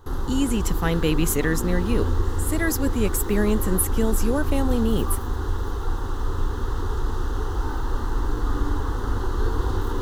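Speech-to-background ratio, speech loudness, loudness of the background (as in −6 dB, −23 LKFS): 3.5 dB, −25.0 LKFS, −28.5 LKFS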